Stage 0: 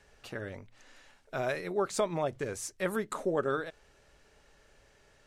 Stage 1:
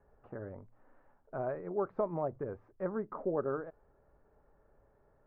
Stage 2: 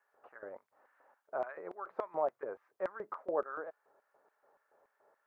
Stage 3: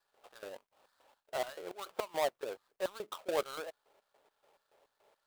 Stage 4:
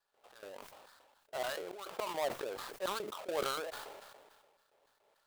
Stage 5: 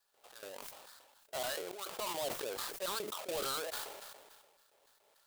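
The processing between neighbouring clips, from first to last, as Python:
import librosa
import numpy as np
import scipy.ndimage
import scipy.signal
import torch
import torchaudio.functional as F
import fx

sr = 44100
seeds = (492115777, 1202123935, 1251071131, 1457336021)

y1 = scipy.signal.sosfilt(scipy.signal.butter(4, 1200.0, 'lowpass', fs=sr, output='sos'), x)
y1 = F.gain(torch.from_numpy(y1), -3.0).numpy()
y2 = fx.filter_lfo_highpass(y1, sr, shape='square', hz=3.5, low_hz=600.0, high_hz=1600.0, q=1.0)
y2 = F.gain(torch.from_numpy(y2), 3.0).numpy()
y3 = fx.dead_time(y2, sr, dead_ms=0.21)
y3 = F.gain(torch.from_numpy(y3), 1.0).numpy()
y4 = fx.sustainer(y3, sr, db_per_s=34.0)
y4 = F.gain(torch.from_numpy(y4), -3.5).numpy()
y5 = np.clip(y4, -10.0 ** (-34.0 / 20.0), 10.0 ** (-34.0 / 20.0))
y5 = fx.high_shelf(y5, sr, hz=3600.0, db=11.0)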